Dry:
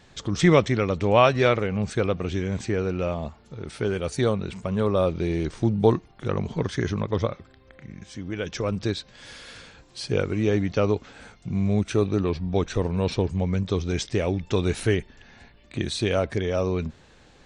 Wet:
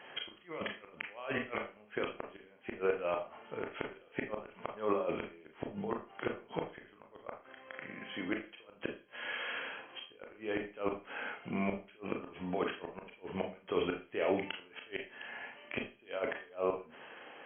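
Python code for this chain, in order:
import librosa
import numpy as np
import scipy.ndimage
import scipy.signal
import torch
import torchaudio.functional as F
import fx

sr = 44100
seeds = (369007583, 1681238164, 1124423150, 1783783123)

y = scipy.signal.sosfilt(scipy.signal.butter(2, 490.0, 'highpass', fs=sr, output='sos'), x)
y = fx.over_compress(y, sr, threshold_db=-33.0, ratio=-1.0)
y = fx.gate_flip(y, sr, shuts_db=-21.0, range_db=-31)
y = fx.brickwall_lowpass(y, sr, high_hz=3300.0)
y = fx.rev_schroeder(y, sr, rt60_s=0.32, comb_ms=26, drr_db=2.5)
y = F.gain(torch.from_numpy(y), 1.0).numpy()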